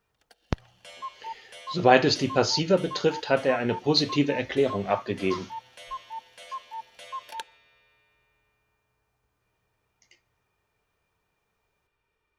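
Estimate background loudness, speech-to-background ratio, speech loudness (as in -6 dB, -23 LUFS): -40.0 LUFS, 15.5 dB, -24.5 LUFS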